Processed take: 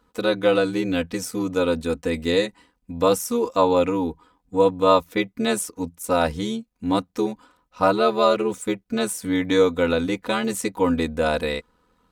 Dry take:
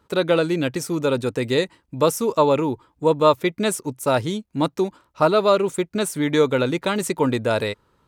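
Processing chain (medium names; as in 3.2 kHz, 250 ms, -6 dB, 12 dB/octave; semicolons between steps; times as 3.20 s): granular stretch 1.5×, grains 24 ms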